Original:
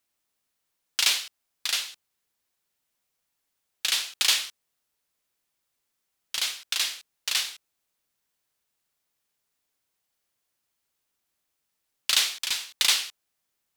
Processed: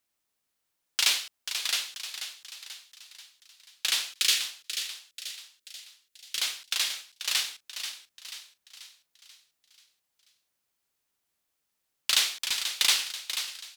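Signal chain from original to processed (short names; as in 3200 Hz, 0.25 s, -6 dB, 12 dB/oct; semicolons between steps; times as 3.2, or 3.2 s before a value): 4.13–6.4 fixed phaser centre 340 Hz, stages 4; frequency-shifting echo 0.486 s, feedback 50%, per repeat +76 Hz, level -9 dB; gain -1.5 dB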